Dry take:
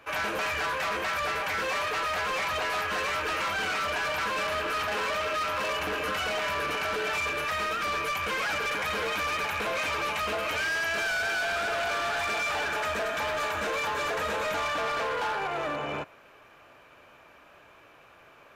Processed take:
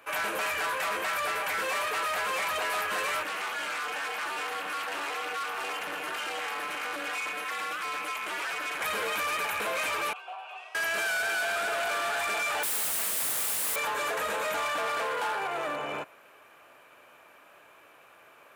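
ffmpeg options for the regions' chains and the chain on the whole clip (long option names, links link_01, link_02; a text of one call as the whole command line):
ffmpeg -i in.wav -filter_complex "[0:a]asettb=1/sr,asplit=3[link_01][link_02][link_03];[link_01]atrim=end=3.234[link_04];[link_02]atrim=start=3.23:end=8.81,asetpts=PTS-STARTPTS,afade=type=in:duration=0.004:curve=qsin,afade=type=out:start_time=5.576:duration=0.004:curve=qsin,acrossover=split=8200[link_05][link_06];[link_06]acompressor=threshold=-54dB:ratio=4:attack=1:release=60[link_07];[link_05][link_07]amix=inputs=2:normalize=0,lowshelf=frequency=290:gain=-8.5,aeval=exprs='val(0)*sin(2*PI*140*n/s)':channel_layout=same[link_08];[link_03]atrim=start=8.806[link_09];[link_04][link_08]acrossfade=duration=0.004:curve1=hsin:curve2=qsin[link_10];[link_10][link_09]acrossfade=duration=0.004:curve1=qsin:curve2=hsin,asettb=1/sr,asplit=3[link_11][link_12][link_13];[link_11]atrim=end=10.134[link_14];[link_12]atrim=start=10.13:end=10.75,asetpts=PTS-STARTPTS,afade=type=in:duration=0.004:curve=qsin,afade=type=out:start_time=0.616:duration=0.004:curve=qsin,afreqshift=310,asplit=3[link_15][link_16][link_17];[link_15]bandpass=frequency=730:width_type=q:width=8,volume=0dB[link_18];[link_16]bandpass=frequency=1090:width_type=q:width=8,volume=-6dB[link_19];[link_17]bandpass=frequency=2440:width_type=q:width=8,volume=-9dB[link_20];[link_18][link_19][link_20]amix=inputs=3:normalize=0[link_21];[link_13]atrim=start=10.746[link_22];[link_14][link_21]acrossfade=duration=0.004:curve1=hsin:curve2=qsin[link_23];[link_23][link_22]acrossfade=duration=0.004:curve1=qsin:curve2=hsin,asettb=1/sr,asplit=3[link_24][link_25][link_26];[link_24]atrim=end=12.634[link_27];[link_25]atrim=start=12.63:end=13.76,asetpts=PTS-STARTPTS,afade=type=in:duration=0.004:curve=qsin,afade=type=out:start_time=1.126:duration=0.004:curve=qsin,highpass=50,acontrast=54,aeval=exprs='(mod(31.6*val(0)+1,2)-1)/31.6':channel_layout=same[link_28];[link_26]atrim=start=13.756[link_29];[link_27][link_28]acrossfade=duration=0.004:curve1=hsin:curve2=qsin[link_30];[link_30][link_29]acrossfade=duration=0.004:curve1=qsin:curve2=hsin,highpass=frequency=350:poles=1,highshelf=frequency=7200:width_type=q:width=1.5:gain=6.5" out.wav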